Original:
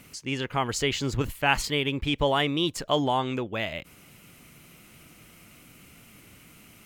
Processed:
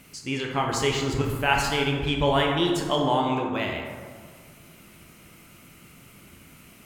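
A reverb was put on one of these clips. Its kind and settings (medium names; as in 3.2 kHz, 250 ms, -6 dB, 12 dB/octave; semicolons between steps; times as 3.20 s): plate-style reverb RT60 1.8 s, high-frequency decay 0.4×, DRR -0.5 dB; trim -1 dB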